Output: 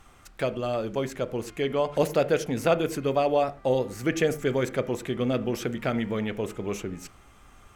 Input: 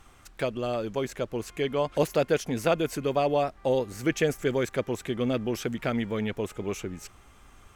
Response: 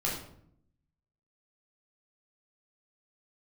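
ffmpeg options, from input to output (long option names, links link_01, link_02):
-filter_complex "[0:a]asplit=2[link_01][link_02];[link_02]highpass=130,lowpass=2800[link_03];[1:a]atrim=start_sample=2205,afade=type=out:start_time=0.17:duration=0.01,atrim=end_sample=7938[link_04];[link_03][link_04]afir=irnorm=-1:irlink=0,volume=-16dB[link_05];[link_01][link_05]amix=inputs=2:normalize=0"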